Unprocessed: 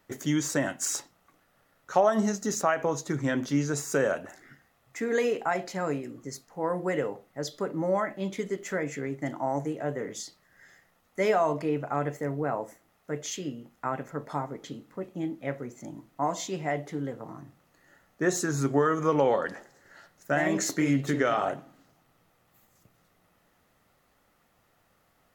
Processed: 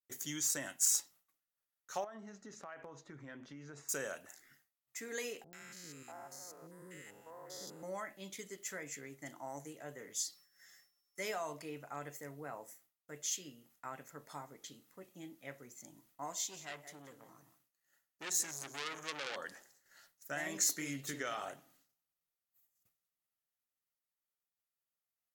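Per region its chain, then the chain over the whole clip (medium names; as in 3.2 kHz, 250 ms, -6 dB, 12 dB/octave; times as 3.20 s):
2.04–3.89 s: low-pass 1.9 kHz + compression, threshold -29 dBFS
5.44–7.83 s: spectrogram pixelated in time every 200 ms + three bands offset in time lows, highs, mids 90/640 ms, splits 420/1400 Hz
10.17–11.19 s: high-pass 150 Hz 6 dB/octave + comb 5.9 ms, depth 81% + whistle 5.4 kHz -64 dBFS
16.32–19.36 s: bass shelf 400 Hz -3.5 dB + delay 175 ms -13 dB + transformer saturation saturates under 2.6 kHz
whole clip: expander -53 dBFS; pre-emphasis filter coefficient 0.9; trim +1 dB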